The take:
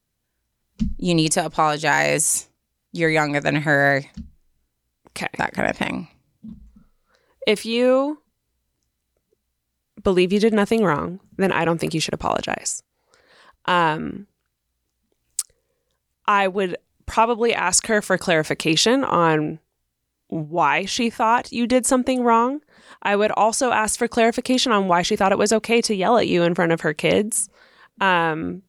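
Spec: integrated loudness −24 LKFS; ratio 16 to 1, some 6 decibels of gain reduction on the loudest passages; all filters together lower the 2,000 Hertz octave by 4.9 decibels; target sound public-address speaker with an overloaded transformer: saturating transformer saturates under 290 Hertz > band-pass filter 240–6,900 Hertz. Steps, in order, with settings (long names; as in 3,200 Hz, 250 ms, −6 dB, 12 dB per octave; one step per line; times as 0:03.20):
parametric band 2,000 Hz −6.5 dB
downward compressor 16 to 1, threshold −18 dBFS
saturating transformer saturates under 290 Hz
band-pass filter 240–6,900 Hz
level +2 dB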